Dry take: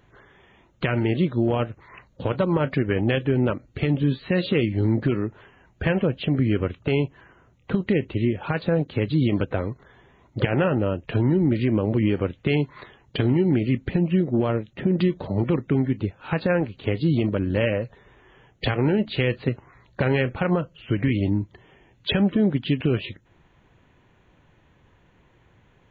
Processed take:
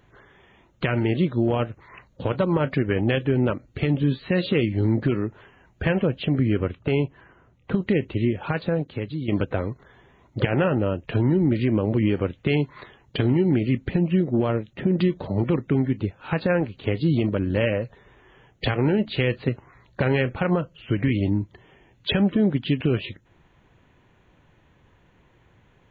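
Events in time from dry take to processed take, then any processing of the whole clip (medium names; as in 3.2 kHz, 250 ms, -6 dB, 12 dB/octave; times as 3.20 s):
6.42–7.82 s: low-pass 3.6 kHz 6 dB/octave
8.49–9.28 s: fade out, to -11.5 dB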